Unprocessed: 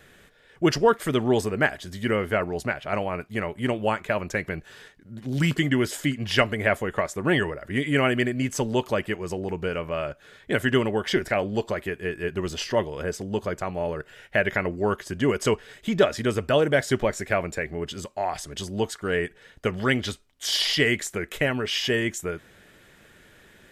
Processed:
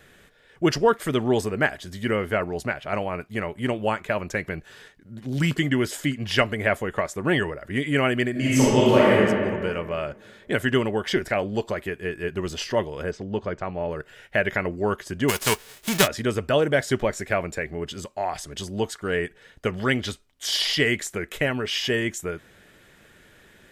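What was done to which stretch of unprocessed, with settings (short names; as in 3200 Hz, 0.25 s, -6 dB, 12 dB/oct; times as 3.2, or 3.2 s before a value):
8.31–9.16 reverb throw, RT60 1.9 s, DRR -8.5 dB
13.11–13.91 air absorption 150 m
15.28–16.06 spectral whitening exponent 0.3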